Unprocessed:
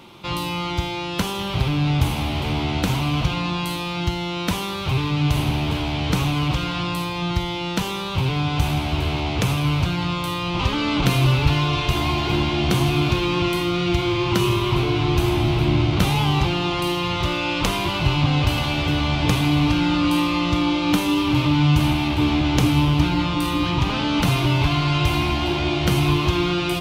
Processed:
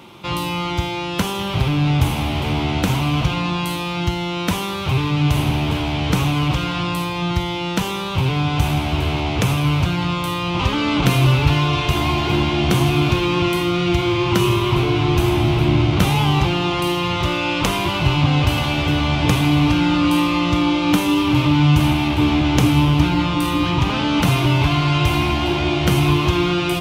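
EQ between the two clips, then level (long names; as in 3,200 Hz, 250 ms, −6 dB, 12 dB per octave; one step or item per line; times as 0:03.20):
high-pass filter 50 Hz
parametric band 4,300 Hz −3.5 dB 0.54 octaves
+3.0 dB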